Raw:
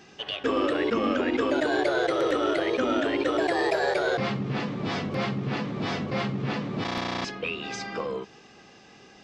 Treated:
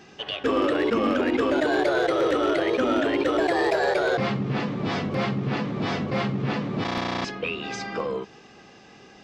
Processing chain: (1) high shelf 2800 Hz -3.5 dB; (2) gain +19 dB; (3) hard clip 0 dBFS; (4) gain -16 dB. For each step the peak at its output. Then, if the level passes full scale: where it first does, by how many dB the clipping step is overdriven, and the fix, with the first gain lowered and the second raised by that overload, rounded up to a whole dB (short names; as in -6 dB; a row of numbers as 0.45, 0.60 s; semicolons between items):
-13.5, +5.5, 0.0, -16.0 dBFS; step 2, 5.5 dB; step 2 +13 dB, step 4 -10 dB